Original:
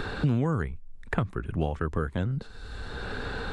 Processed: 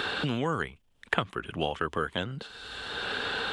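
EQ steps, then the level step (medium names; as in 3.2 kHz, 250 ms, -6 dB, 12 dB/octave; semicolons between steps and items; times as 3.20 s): high-pass 640 Hz 6 dB/octave; peaking EQ 3.1 kHz +11 dB 0.44 oct; +5.0 dB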